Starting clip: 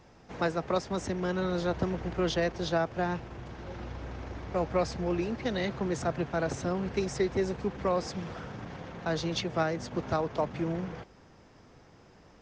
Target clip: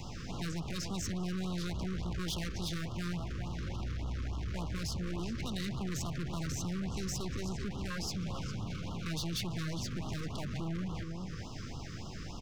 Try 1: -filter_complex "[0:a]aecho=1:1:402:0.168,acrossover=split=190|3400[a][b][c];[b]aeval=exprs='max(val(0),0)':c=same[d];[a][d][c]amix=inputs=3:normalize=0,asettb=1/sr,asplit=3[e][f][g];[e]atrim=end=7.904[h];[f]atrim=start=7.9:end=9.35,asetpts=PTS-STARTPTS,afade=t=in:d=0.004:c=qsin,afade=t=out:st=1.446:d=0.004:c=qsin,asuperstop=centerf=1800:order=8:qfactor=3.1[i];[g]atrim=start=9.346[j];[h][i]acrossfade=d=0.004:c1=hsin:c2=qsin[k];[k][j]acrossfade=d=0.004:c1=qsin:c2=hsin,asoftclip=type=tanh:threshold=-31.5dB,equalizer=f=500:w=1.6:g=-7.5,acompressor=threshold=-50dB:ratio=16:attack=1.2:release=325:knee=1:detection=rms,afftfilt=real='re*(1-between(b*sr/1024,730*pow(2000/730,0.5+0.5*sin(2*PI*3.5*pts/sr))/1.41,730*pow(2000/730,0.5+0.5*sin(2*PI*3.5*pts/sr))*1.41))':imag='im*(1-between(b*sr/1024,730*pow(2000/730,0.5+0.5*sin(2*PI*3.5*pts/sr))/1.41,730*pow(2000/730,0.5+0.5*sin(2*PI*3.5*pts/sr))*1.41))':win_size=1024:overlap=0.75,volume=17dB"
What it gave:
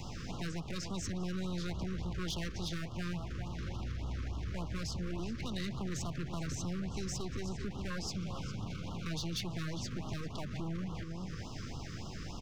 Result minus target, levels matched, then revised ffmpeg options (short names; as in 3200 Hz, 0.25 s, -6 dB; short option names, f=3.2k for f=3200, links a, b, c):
soft clip: distortion -4 dB
-filter_complex "[0:a]aecho=1:1:402:0.168,acrossover=split=190|3400[a][b][c];[b]aeval=exprs='max(val(0),0)':c=same[d];[a][d][c]amix=inputs=3:normalize=0,asettb=1/sr,asplit=3[e][f][g];[e]atrim=end=7.904[h];[f]atrim=start=7.9:end=9.35,asetpts=PTS-STARTPTS,afade=t=in:d=0.004:c=qsin,afade=t=out:st=1.446:d=0.004:c=qsin,asuperstop=centerf=1800:order=8:qfactor=3.1[i];[g]atrim=start=9.346[j];[h][i]acrossfade=d=0.004:c1=hsin:c2=qsin[k];[k][j]acrossfade=d=0.004:c1=qsin:c2=hsin,asoftclip=type=tanh:threshold=-39dB,equalizer=f=500:w=1.6:g=-7.5,acompressor=threshold=-50dB:ratio=16:attack=1.2:release=325:knee=1:detection=rms,afftfilt=real='re*(1-between(b*sr/1024,730*pow(2000/730,0.5+0.5*sin(2*PI*3.5*pts/sr))/1.41,730*pow(2000/730,0.5+0.5*sin(2*PI*3.5*pts/sr))*1.41))':imag='im*(1-between(b*sr/1024,730*pow(2000/730,0.5+0.5*sin(2*PI*3.5*pts/sr))/1.41,730*pow(2000/730,0.5+0.5*sin(2*PI*3.5*pts/sr))*1.41))':win_size=1024:overlap=0.75,volume=17dB"